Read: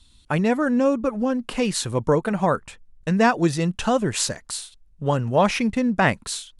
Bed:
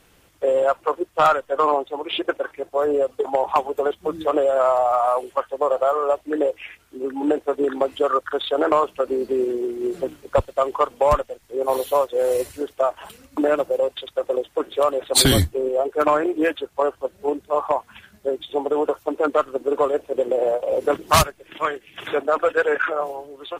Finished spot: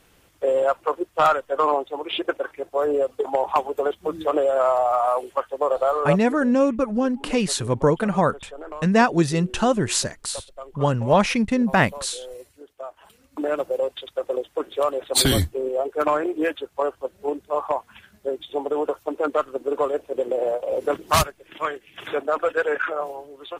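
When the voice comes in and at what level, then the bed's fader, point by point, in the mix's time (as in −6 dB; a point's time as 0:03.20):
5.75 s, +1.0 dB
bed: 0:06.18 −1.5 dB
0:06.42 −18 dB
0:12.67 −18 dB
0:13.65 −3 dB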